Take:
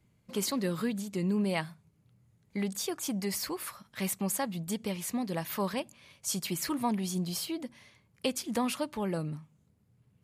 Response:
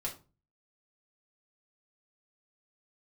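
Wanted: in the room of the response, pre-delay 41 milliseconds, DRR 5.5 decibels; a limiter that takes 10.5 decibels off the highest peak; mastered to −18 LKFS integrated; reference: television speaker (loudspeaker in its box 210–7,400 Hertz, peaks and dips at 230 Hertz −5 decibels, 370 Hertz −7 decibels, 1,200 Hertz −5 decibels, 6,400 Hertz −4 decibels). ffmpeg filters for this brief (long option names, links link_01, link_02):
-filter_complex "[0:a]alimiter=level_in=2.5dB:limit=-24dB:level=0:latency=1,volume=-2.5dB,asplit=2[link_01][link_02];[1:a]atrim=start_sample=2205,adelay=41[link_03];[link_02][link_03]afir=irnorm=-1:irlink=0,volume=-7dB[link_04];[link_01][link_04]amix=inputs=2:normalize=0,highpass=frequency=210:width=0.5412,highpass=frequency=210:width=1.3066,equalizer=frequency=230:width_type=q:width=4:gain=-5,equalizer=frequency=370:width_type=q:width=4:gain=-7,equalizer=frequency=1200:width_type=q:width=4:gain=-5,equalizer=frequency=6400:width_type=q:width=4:gain=-4,lowpass=frequency=7400:width=0.5412,lowpass=frequency=7400:width=1.3066,volume=21.5dB"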